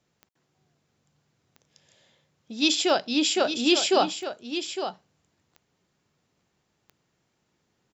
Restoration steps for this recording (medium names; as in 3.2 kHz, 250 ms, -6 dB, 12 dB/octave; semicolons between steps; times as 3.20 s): de-click; inverse comb 858 ms -9.5 dB